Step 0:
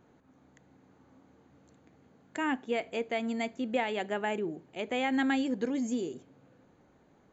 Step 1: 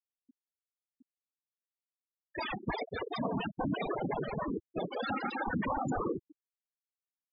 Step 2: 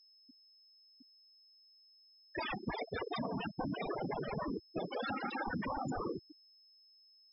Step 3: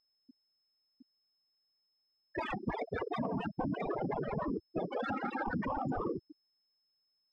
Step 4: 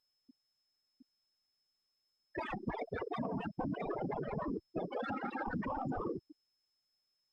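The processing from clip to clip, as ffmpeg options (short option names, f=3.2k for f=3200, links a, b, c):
-af "aeval=exprs='0.119*sin(PI/2*7.08*val(0)/0.119)':c=same,afftfilt=real='hypot(re,im)*cos(2*PI*random(0))':imag='hypot(re,im)*sin(2*PI*random(1))':win_size=512:overlap=0.75,afftfilt=real='re*gte(hypot(re,im),0.1)':imag='im*gte(hypot(re,im),0.1)':win_size=1024:overlap=0.75,volume=-4dB"
-af "acompressor=threshold=-36dB:ratio=6,aeval=exprs='val(0)+0.000708*sin(2*PI*5200*n/s)':c=same,volume=1dB"
-af "adynamicsmooth=sensitivity=2:basefreq=2k,volume=3.5dB"
-af "volume=-2.5dB" -ar 48000 -c:a libopus -b:a 32k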